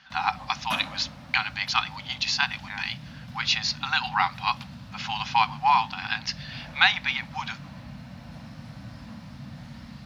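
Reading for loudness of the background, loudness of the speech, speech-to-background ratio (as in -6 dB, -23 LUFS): -42.0 LUFS, -26.0 LUFS, 16.0 dB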